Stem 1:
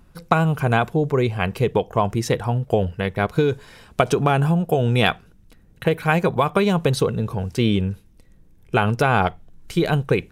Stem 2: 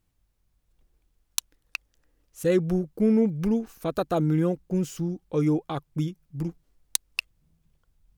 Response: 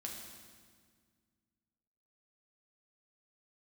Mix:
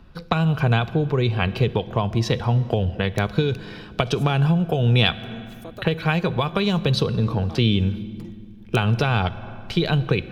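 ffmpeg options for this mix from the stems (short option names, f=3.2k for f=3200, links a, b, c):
-filter_complex "[0:a]highshelf=f=5.9k:t=q:w=1.5:g=-13,bandreject=f=2.1k:w=17,volume=2.5dB,asplit=3[a][b][c];[b]volume=-11dB[d];[1:a]highpass=210,acompressor=threshold=-31dB:ratio=6,adelay=1800,volume=-4.5dB,asplit=2[e][f];[f]volume=-17.5dB[g];[c]apad=whole_len=439932[h];[e][h]sidechaincompress=threshold=-19dB:ratio=8:attack=16:release=415[i];[2:a]atrim=start_sample=2205[j];[d][g]amix=inputs=2:normalize=0[k];[k][j]afir=irnorm=-1:irlink=0[l];[a][i][l]amix=inputs=3:normalize=0,acrossover=split=150|3000[m][n][o];[n]acompressor=threshold=-22dB:ratio=4[p];[m][p][o]amix=inputs=3:normalize=0"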